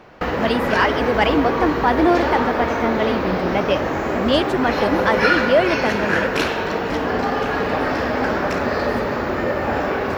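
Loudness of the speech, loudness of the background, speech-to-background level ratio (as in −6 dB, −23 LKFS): −21.0 LKFS, −21.0 LKFS, 0.0 dB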